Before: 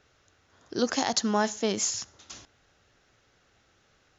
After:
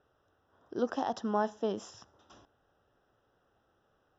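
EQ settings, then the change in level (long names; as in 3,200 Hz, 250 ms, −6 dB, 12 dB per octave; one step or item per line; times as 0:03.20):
moving average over 20 samples
low-shelf EQ 310 Hz −9.5 dB
0.0 dB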